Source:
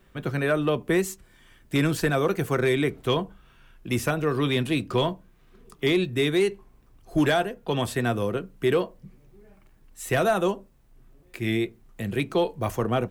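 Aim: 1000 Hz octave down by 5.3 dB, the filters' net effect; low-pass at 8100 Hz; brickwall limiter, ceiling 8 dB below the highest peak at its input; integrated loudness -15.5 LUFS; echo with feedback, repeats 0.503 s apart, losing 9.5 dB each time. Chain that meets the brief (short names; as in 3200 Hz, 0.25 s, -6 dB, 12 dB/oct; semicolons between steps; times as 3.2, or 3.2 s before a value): LPF 8100 Hz; bell 1000 Hz -8 dB; limiter -21.5 dBFS; feedback echo 0.503 s, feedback 33%, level -9.5 dB; gain +16.5 dB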